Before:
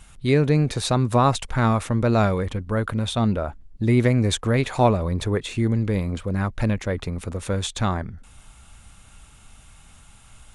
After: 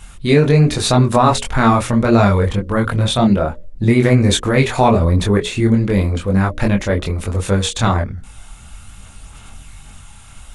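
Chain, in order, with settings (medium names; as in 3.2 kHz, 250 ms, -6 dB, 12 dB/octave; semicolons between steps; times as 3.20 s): hum notches 60/120/180/240/300/360/420/480/540/600 Hz; chorus voices 4, 1.2 Hz, delay 23 ms, depth 3 ms; loudness maximiser +12.5 dB; trim -1 dB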